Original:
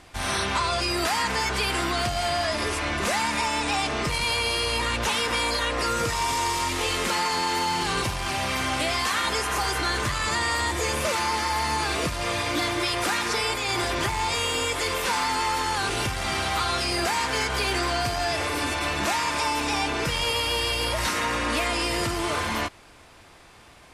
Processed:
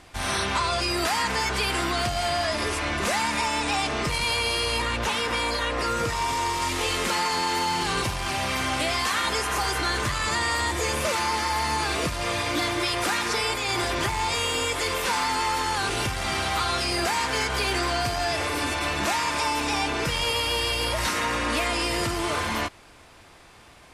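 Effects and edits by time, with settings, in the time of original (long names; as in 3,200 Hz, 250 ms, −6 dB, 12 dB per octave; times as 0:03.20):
0:04.82–0:06.62: high-shelf EQ 4,100 Hz −5 dB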